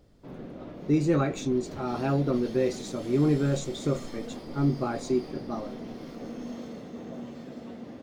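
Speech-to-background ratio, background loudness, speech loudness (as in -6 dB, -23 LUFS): 13.0 dB, -41.0 LUFS, -28.0 LUFS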